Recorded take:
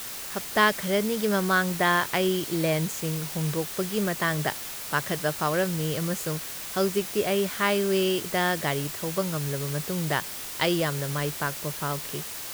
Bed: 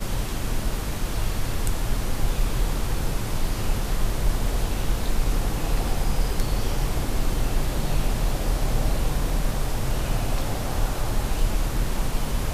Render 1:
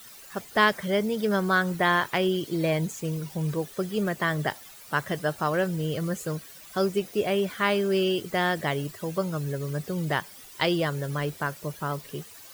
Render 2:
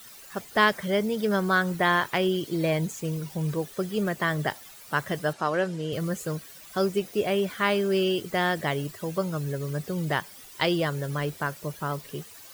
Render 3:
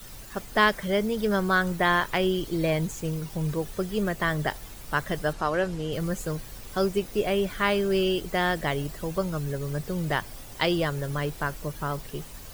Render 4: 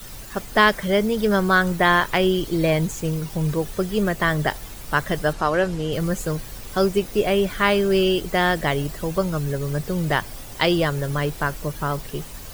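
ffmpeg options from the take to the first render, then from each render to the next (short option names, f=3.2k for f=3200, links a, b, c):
-af "afftdn=nr=14:nf=-37"
-filter_complex "[0:a]asettb=1/sr,asplit=3[a][b][c];[a]atrim=end=5.334[d];[b]atrim=start=5.33:end=5.93,asetpts=PTS-STARTPTS,afade=t=in:d=0.004:c=qsin,afade=t=out:st=0.596:d=0.004:c=qsin,highpass=190,lowpass=7.4k[e];[c]atrim=start=5.926[f];[d][e]acrossfade=d=0.004:c1=hsin:c2=qsin[g];[g][f]acrossfade=d=0.004:c1=qsin:c2=hsin"
-filter_complex "[1:a]volume=-19.5dB[a];[0:a][a]amix=inputs=2:normalize=0"
-af "volume=5.5dB,alimiter=limit=-3dB:level=0:latency=1"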